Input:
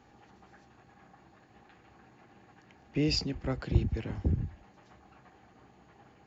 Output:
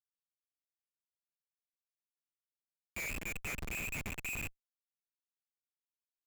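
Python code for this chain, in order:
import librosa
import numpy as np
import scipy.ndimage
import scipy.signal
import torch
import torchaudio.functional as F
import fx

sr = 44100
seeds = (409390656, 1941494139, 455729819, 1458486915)

y = fx.freq_invert(x, sr, carrier_hz=2600)
y = fx.schmitt(y, sr, flips_db=-32.5)
y = y * librosa.db_to_amplitude(-3.0)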